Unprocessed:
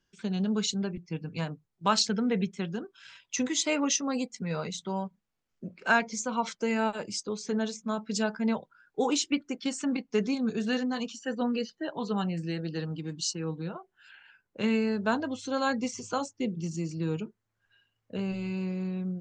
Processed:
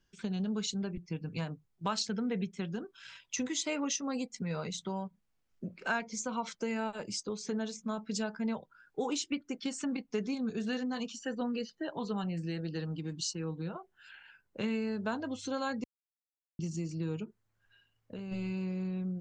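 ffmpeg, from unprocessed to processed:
-filter_complex "[0:a]asplit=3[s0][s1][s2];[s0]afade=t=out:st=17.24:d=0.02[s3];[s1]acompressor=threshold=0.0112:ratio=6:attack=3.2:release=140:knee=1:detection=peak,afade=t=in:st=17.24:d=0.02,afade=t=out:st=18.31:d=0.02[s4];[s2]afade=t=in:st=18.31:d=0.02[s5];[s3][s4][s5]amix=inputs=3:normalize=0,asplit=3[s6][s7][s8];[s6]atrim=end=15.84,asetpts=PTS-STARTPTS,afade=t=out:st=15.836:d=0.004:c=hsin[s9];[s7]atrim=start=15.84:end=16.59,asetpts=PTS-STARTPTS,volume=0[s10];[s8]atrim=start=16.59,asetpts=PTS-STARTPTS,afade=t=in:d=0.004:c=hsin[s11];[s9][s10][s11]concat=n=3:v=0:a=1,lowshelf=f=74:g=8,acompressor=threshold=0.0158:ratio=2"

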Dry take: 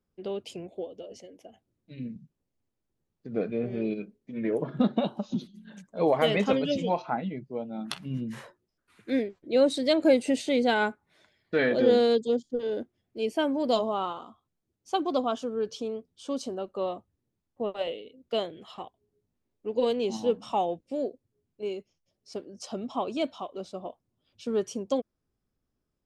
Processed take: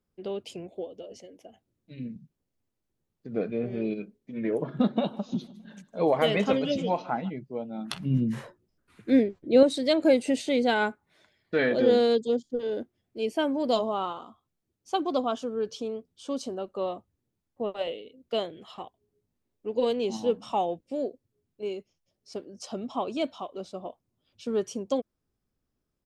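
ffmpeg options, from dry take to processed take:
-filter_complex "[0:a]asplit=3[s0][s1][s2];[s0]afade=t=out:st=4.78:d=0.02[s3];[s1]aecho=1:1:154|308|462|616:0.0891|0.0446|0.0223|0.0111,afade=t=in:st=4.78:d=0.02,afade=t=out:st=7.29:d=0.02[s4];[s2]afade=t=in:st=7.29:d=0.02[s5];[s3][s4][s5]amix=inputs=3:normalize=0,asettb=1/sr,asplit=3[s6][s7][s8];[s6]atrim=end=7.944[s9];[s7]atrim=start=7.94:end=9.63,asetpts=PTS-STARTPTS,afade=t=in:d=0.004:c=qsin,afade=t=out:st=1.686:d=0.004:c=qsin,lowshelf=f=440:g=9.5[s10];[s8]atrim=start=9.626[s11];[s9][s10]acrossfade=d=0.004:c1=hsin:c2=qsin[s12];[s12][s11]acrossfade=d=0.004:c1=qsin:c2=hsin"

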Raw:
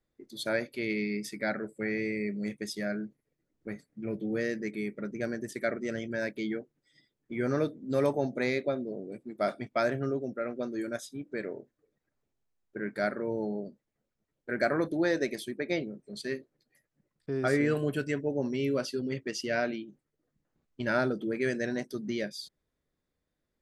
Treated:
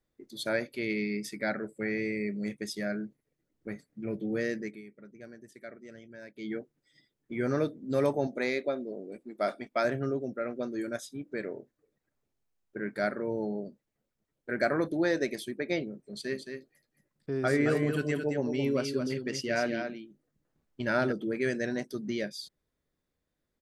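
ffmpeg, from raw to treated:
-filter_complex "[0:a]asettb=1/sr,asplit=3[s0][s1][s2];[s0]atrim=end=8.274[s3];[s1]atrim=start=8.27:end=9.85,asetpts=PTS-STARTPTS,afade=t=in:d=0.004:c=qsin,afade=t=out:st=1.576:d=0.004:c=qsin,equalizer=f=110:w=1.3:g=-14[s4];[s2]atrim=start=9.846[s5];[s3][s4]acrossfade=d=0.004:c1=hsin:c2=qsin[s6];[s6][s5]acrossfade=d=0.004:c1=qsin:c2=hsin,asplit=3[s7][s8][s9];[s7]afade=t=out:st=16.25:d=0.02[s10];[s8]aecho=1:1:220:0.473,afade=t=in:st=16.25:d=0.02,afade=t=out:st=21.11:d=0.02[s11];[s9]afade=t=in:st=21.11:d=0.02[s12];[s10][s11][s12]amix=inputs=3:normalize=0,asplit=3[s13][s14][s15];[s13]atrim=end=4.82,asetpts=PTS-STARTPTS,afade=t=out:st=4.58:d=0.24:silence=0.188365[s16];[s14]atrim=start=4.82:end=6.34,asetpts=PTS-STARTPTS,volume=0.188[s17];[s15]atrim=start=6.34,asetpts=PTS-STARTPTS,afade=t=in:d=0.24:silence=0.188365[s18];[s16][s17][s18]concat=n=3:v=0:a=1"

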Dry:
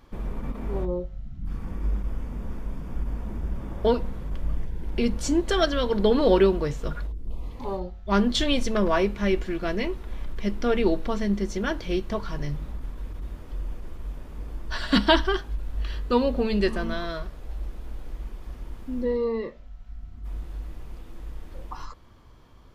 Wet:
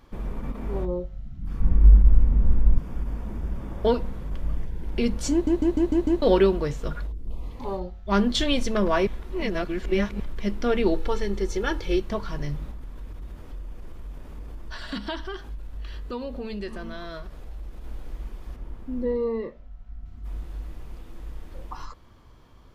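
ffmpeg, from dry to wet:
-filter_complex "[0:a]asettb=1/sr,asplit=3[s0][s1][s2];[s0]atrim=end=1.604[s3];[s1]atrim=start=1.6:end=2.78,asetpts=PTS-STARTPTS,afade=t=in:d=0.004:c=qsin,afade=t=out:st=1.176:d=0.004:c=qsin,aemphasis=mode=reproduction:type=bsi[s4];[s2]atrim=start=2.776[s5];[s3][s4]acrossfade=d=0.004:c1=hsin:c2=qsin[s6];[s6][s5]acrossfade=d=0.004:c1=qsin:c2=hsin,asettb=1/sr,asplit=3[s7][s8][s9];[s7]atrim=end=10.944[s10];[s8]atrim=start=10.94:end=12,asetpts=PTS-STARTPTS,afade=t=in:d=0.004:c=qsin,afade=t=out:st=1.056:d=0.004:c=qsin,aecho=1:1:2.3:0.65,atrim=end_sample=46746[s11];[s9]atrim=start=11.996[s12];[s10][s11]acrossfade=d=0.004:c1=hsin:c2=qsin[s13];[s13][s12]acrossfade=d=0.004:c1=qsin:c2=hsin,asettb=1/sr,asplit=3[s14][s15][s16];[s14]atrim=end=12.704[s17];[s15]atrim=start=12.7:end=17.84,asetpts=PTS-STARTPTS,afade=t=in:d=0.004:c=qsin,afade=t=out:st=5.136:d=0.004:c=qsin,acompressor=threshold=0.02:ratio=2.5:attack=3.2:release=140:knee=1:detection=peak[s18];[s16]atrim=start=17.836[s19];[s17][s18]acrossfade=d=0.004:c1=hsin:c2=qsin[s20];[s20][s19]acrossfade=d=0.004:c1=qsin:c2=hsin,asettb=1/sr,asplit=3[s21][s22][s23];[s21]atrim=end=18.564[s24];[s22]atrim=start=18.56:end=20.06,asetpts=PTS-STARTPTS,afade=t=in:d=0.004:c=qsin,afade=t=out:st=1.496:d=0.004:c=qsin,highshelf=f=2300:g=-9.5[s25];[s23]atrim=start=20.056[s26];[s24][s25]acrossfade=d=0.004:c1=hsin:c2=qsin[s27];[s27][s26]acrossfade=d=0.004:c1=qsin:c2=hsin,asplit=9[s28][s29][s30][s31][s32][s33][s34][s35][s36];[s28]atrim=end=5.472[s37];[s29]atrim=start=5.318:end=5.472[s38];[s30]atrim=start=5.318:end=5.472[s39];[s31]atrim=start=5.318:end=5.472[s40];[s32]atrim=start=5.318:end=5.472[s41];[s33]atrim=start=5.318:end=5.472[s42];[s34]atrim=start=6.218:end=9.072[s43];[s35]atrim=start=9.068:end=10.202,asetpts=PTS-STARTPTS,areverse[s44];[s36]atrim=start=10.198[s45];[s37][s38]acrossfade=d=0.004:c1=hsin:c2=hsin[s46];[s46][s39]acrossfade=d=0.004:c1=hsin:c2=hsin[s47];[s47][s40]acrossfade=d=0.004:c1=hsin:c2=hsin[s48];[s48][s41]acrossfade=d=0.004:c1=hsin:c2=hsin[s49];[s49][s42]acrossfade=d=0.004:c1=hsin:c2=hsin[s50];[s50][s43]acrossfade=d=0.004:c1=hsin:c2=hsin[s51];[s51][s44]acrossfade=d=0.004:c1=hsin:c2=hsin[s52];[s52][s45]acrossfade=d=0.004:c1=hsin:c2=hsin"

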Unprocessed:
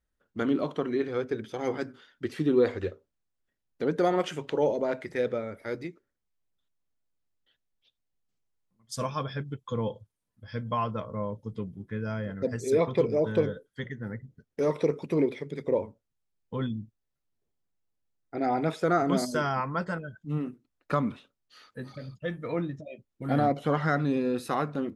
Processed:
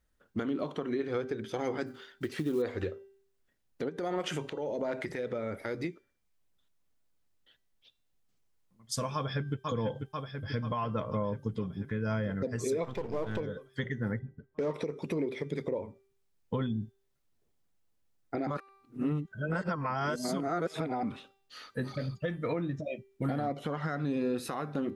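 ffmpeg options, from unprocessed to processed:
-filter_complex "[0:a]asettb=1/sr,asplit=3[s0][s1][s2];[s0]atrim=end=1.864[s3];[s1]atrim=start=1.86:end=2.62,asetpts=PTS-STARTPTS,afade=t=in:d=0.004:c=qsin,afade=t=out:st=0.756:d=0.004:c=qsin,acrusher=bits=7:mode=log:mix=0:aa=0.000001[s4];[s2]atrim=start=2.616[s5];[s3][s4]acrossfade=d=0.004:c1=hsin:c2=qsin[s6];[s6][s5]acrossfade=d=0.004:c1=qsin:c2=hsin,asplit=3[s7][s8][s9];[s7]afade=t=out:st=3.88:d=0.02[s10];[s8]acompressor=threshold=0.0158:ratio=4:attack=3.2:release=140:knee=1:detection=peak,afade=t=in:st=3.88:d=0.02,afade=t=out:st=5.82:d=0.02[s11];[s9]afade=t=in:st=5.82:d=0.02[s12];[s10][s11][s12]amix=inputs=3:normalize=0,asplit=2[s13][s14];[s14]afade=t=in:st=9.15:d=0.01,afade=t=out:st=9.65:d=0.01,aecho=0:1:490|980|1470|1960|2450|2940|3430|3920|4410|4900|5390:0.354813|0.248369|0.173859|0.121701|0.0851907|0.0596335|0.0417434|0.0292204|0.0204543|0.014318|0.0100226[s15];[s13][s15]amix=inputs=2:normalize=0,asplit=3[s16][s17][s18];[s16]afade=t=out:st=12.83:d=0.02[s19];[s17]aeval=exprs='if(lt(val(0),0),0.251*val(0),val(0))':c=same,afade=t=in:st=12.83:d=0.02,afade=t=out:st=13.39:d=0.02[s20];[s18]afade=t=in:st=13.39:d=0.02[s21];[s19][s20][s21]amix=inputs=3:normalize=0,asettb=1/sr,asplit=3[s22][s23][s24];[s22]atrim=end=14.194[s25];[s23]atrim=start=14.19:end=14.74,asetpts=PTS-STARTPTS,afade=t=in:d=0.004:c=qsin,afade=t=out:st=0.546:d=0.004:c=qsin,adynamicsmooth=sensitivity=6.5:basefreq=1700[s26];[s24]atrim=start=14.736[s27];[s25][s26]acrossfade=d=0.004:c1=hsin:c2=qsin[s28];[s28][s27]acrossfade=d=0.004:c1=qsin:c2=hsin,asplit=3[s29][s30][s31];[s29]atrim=end=18.472[s32];[s30]atrim=start=18.468:end=21.032,asetpts=PTS-STARTPTS,areverse[s33];[s31]atrim=start=21.028[s34];[s32][s33]acrossfade=d=0.004:c1=hsin:c2=hsin[s35];[s35][s34]acrossfade=d=0.004:c1=hsin:c2=hsin,bandreject=f=391.9:t=h:w=4,bandreject=f=783.8:t=h:w=4,bandreject=f=1175.7:t=h:w=4,bandreject=f=1567.6:t=h:w=4,bandreject=f=1959.5:t=h:w=4,bandreject=f=2351.4:t=h:w=4,bandreject=f=2743.3:t=h:w=4,bandreject=f=3135.2:t=h:w=4,bandreject=f=3527.1:t=h:w=4,bandreject=f=3919:t=h:w=4,bandreject=f=4310.9:t=h:w=4,bandreject=f=4702.8:t=h:w=4,bandreject=f=5094.7:t=h:w=4,bandreject=f=5486.6:t=h:w=4,bandreject=f=5878.5:t=h:w=4,bandreject=f=6270.4:t=h:w=4,bandreject=f=6662.3:t=h:w=4,bandreject=f=7054.2:t=h:w=4,bandreject=f=7446.1:t=h:w=4,bandreject=f=7838:t=h:w=4,bandreject=f=8229.9:t=h:w=4,bandreject=f=8621.8:t=h:w=4,bandreject=f=9013.7:t=h:w=4,bandreject=f=9405.6:t=h:w=4,bandreject=f=9797.5:t=h:w=4,bandreject=f=10189.4:t=h:w=4,bandreject=f=10581.3:t=h:w=4,bandreject=f=10973.2:t=h:w=4,bandreject=f=11365.1:t=h:w=4,bandreject=f=11757:t=h:w=4,bandreject=f=12148.9:t=h:w=4,bandreject=f=12540.8:t=h:w=4,bandreject=f=12932.7:t=h:w=4,bandreject=f=13324.6:t=h:w=4,bandreject=f=13716.5:t=h:w=4,bandreject=f=14108.4:t=h:w=4,bandreject=f=14500.3:t=h:w=4,bandreject=f=14892.2:t=h:w=4,bandreject=f=15284.1:t=h:w=4,acompressor=threshold=0.0282:ratio=6,alimiter=level_in=1.68:limit=0.0631:level=0:latency=1:release=346,volume=0.596,volume=2"

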